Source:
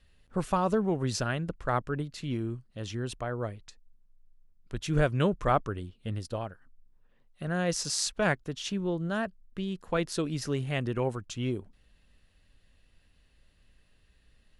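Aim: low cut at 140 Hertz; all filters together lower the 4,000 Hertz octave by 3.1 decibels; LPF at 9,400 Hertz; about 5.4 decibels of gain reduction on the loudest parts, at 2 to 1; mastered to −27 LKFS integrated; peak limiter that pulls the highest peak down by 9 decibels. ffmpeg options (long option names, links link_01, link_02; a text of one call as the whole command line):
ffmpeg -i in.wav -af "highpass=140,lowpass=9400,equalizer=frequency=4000:width_type=o:gain=-4,acompressor=threshold=-31dB:ratio=2,volume=10dB,alimiter=limit=-15dB:level=0:latency=1" out.wav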